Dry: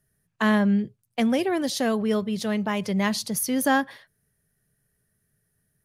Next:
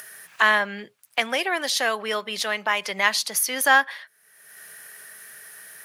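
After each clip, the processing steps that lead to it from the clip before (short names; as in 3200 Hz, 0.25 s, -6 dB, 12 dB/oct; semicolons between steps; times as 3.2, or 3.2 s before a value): HPF 750 Hz 12 dB/oct; bell 2000 Hz +6 dB 1.9 oct; upward compressor, threshold -26 dBFS; gain +4 dB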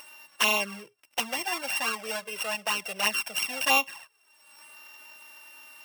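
sample sorter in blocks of 16 samples; envelope flanger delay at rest 3.8 ms, full sweep at -14.5 dBFS; gain -2.5 dB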